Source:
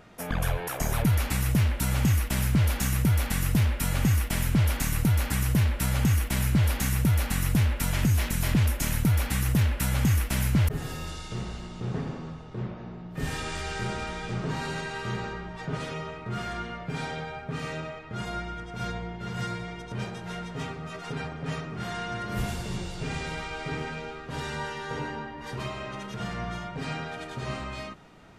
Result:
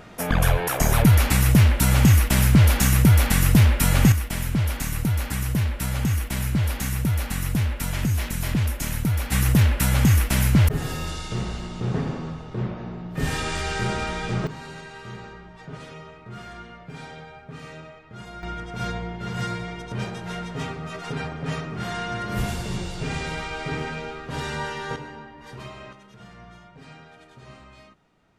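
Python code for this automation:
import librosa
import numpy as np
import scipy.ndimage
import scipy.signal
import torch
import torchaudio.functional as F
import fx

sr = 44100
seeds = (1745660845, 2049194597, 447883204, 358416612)

y = fx.gain(x, sr, db=fx.steps((0.0, 8.0), (4.12, 0.0), (9.32, 6.0), (14.47, -6.0), (18.43, 4.0), (24.96, -4.5), (25.93, -12.0)))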